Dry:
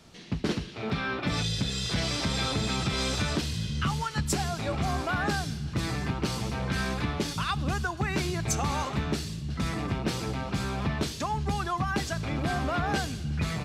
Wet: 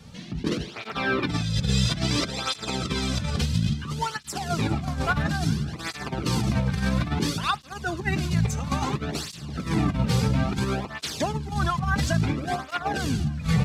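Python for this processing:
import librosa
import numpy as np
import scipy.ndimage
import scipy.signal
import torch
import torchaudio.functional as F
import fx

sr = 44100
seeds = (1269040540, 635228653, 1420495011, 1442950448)

p1 = np.sign(x) * np.maximum(np.abs(x) - 10.0 ** (-47.0 / 20.0), 0.0)
p2 = x + F.gain(torch.from_numpy(p1), -10.0).numpy()
p3 = fx.low_shelf(p2, sr, hz=160.0, db=10.5)
p4 = fx.over_compress(p3, sr, threshold_db=-24.0, ratio=-0.5)
p5 = p4 + fx.echo_thinned(p4, sr, ms=394, feedback_pct=74, hz=420.0, wet_db=-23.5, dry=0)
p6 = fx.flanger_cancel(p5, sr, hz=0.59, depth_ms=3.2)
y = F.gain(torch.from_numpy(p6), 3.5).numpy()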